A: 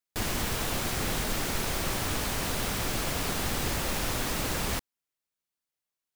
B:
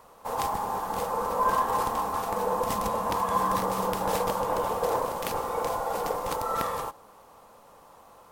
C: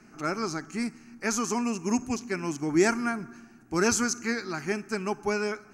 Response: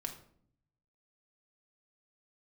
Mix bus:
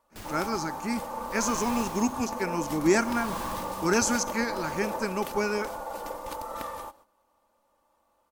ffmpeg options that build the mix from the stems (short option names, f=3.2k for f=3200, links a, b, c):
-filter_complex "[0:a]aeval=exprs='val(0)*pow(10,-25*(0.5-0.5*cos(2*PI*0.59*n/s))/20)':c=same,volume=-9dB[a];[1:a]aecho=1:1:3.4:0.62,volume=-7.5dB[b];[2:a]adelay=100,volume=0dB[c];[a][b][c]amix=inputs=3:normalize=0,agate=range=-11dB:threshold=-54dB:ratio=16:detection=peak"